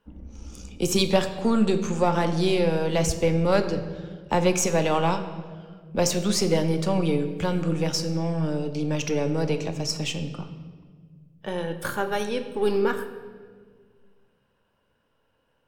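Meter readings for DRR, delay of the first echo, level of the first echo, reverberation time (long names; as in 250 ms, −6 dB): 7.0 dB, no echo audible, no echo audible, 1.7 s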